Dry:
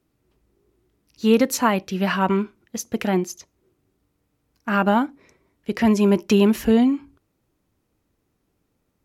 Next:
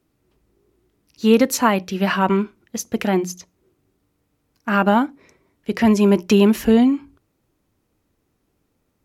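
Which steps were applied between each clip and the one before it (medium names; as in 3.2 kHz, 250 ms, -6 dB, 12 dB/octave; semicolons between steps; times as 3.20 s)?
hum notches 60/120/180 Hz; trim +2.5 dB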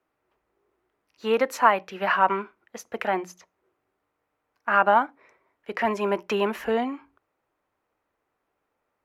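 three-band isolator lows -21 dB, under 530 Hz, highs -17 dB, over 2.3 kHz; trim +1.5 dB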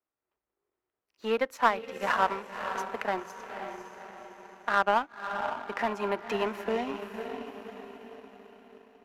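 echo that smears into a reverb 535 ms, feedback 47%, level -7 dB; power-law waveshaper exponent 1.4; three bands compressed up and down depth 40%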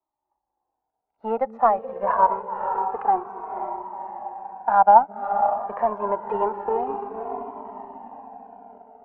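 resonant low-pass 850 Hz, resonance Q 5.4; repeats whose band climbs or falls 212 ms, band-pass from 240 Hz, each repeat 0.7 oct, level -9 dB; Shepard-style flanger falling 0.26 Hz; trim +5.5 dB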